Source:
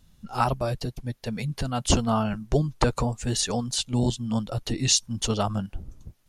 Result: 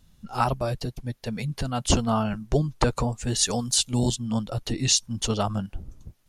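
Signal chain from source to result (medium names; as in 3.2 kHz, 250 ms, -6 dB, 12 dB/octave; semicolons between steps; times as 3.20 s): 3.41–4.16 s: treble shelf 5.6 kHz +11 dB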